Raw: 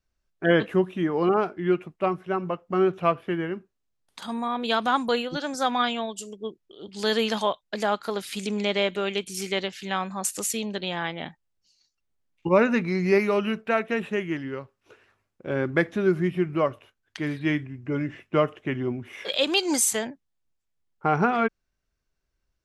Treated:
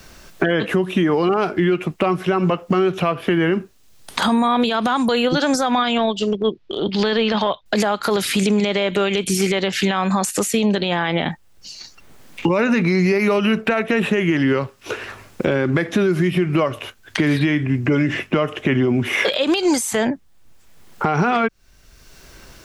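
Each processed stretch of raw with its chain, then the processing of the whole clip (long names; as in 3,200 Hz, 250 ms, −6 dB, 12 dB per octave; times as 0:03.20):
0:05.98–0:07.66: low-pass filter 4,300 Hz 24 dB per octave + transient designer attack −11 dB, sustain −4 dB
whole clip: downward compressor 6 to 1, threshold −29 dBFS; boost into a limiter +27.5 dB; multiband upward and downward compressor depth 70%; level −8.5 dB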